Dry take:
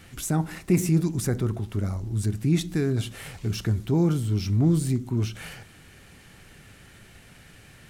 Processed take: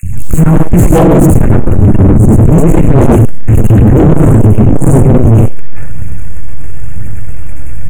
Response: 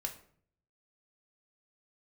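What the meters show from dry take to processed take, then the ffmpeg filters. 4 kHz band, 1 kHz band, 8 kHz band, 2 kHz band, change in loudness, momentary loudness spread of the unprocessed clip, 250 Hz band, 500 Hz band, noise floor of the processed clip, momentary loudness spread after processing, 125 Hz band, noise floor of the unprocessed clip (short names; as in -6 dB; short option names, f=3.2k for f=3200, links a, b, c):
n/a, +23.0 dB, +10.5 dB, +14.0 dB, +19.0 dB, 10 LU, +18.5 dB, +21.0 dB, -4 dBFS, 19 LU, +19.5 dB, -51 dBFS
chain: -filter_complex "[0:a]aeval=exprs='max(val(0),0)':c=same,acrossover=split=250|2800[a][b][c];[a]adelay=30[d];[b]adelay=130[e];[d][e][c]amix=inputs=3:normalize=0,aphaser=in_gain=1:out_gain=1:delay=3.7:decay=0.53:speed=1:type=triangular,asplit=2[f][g];[1:a]atrim=start_sample=2205,adelay=99[h];[g][h]afir=irnorm=-1:irlink=0,volume=0.5dB[i];[f][i]amix=inputs=2:normalize=0,acontrast=43,afftfilt=real='re*(1-between(b*sr/4096,2800,6400))':imag='im*(1-between(b*sr/4096,2800,6400))':win_size=4096:overlap=0.75,bass=f=250:g=10,treble=f=4k:g=1,aeval=exprs='0.473*sin(PI/2*2.24*val(0)/0.473)':c=same,lowshelf=f=450:g=8.5,acontrast=42,volume=-1dB"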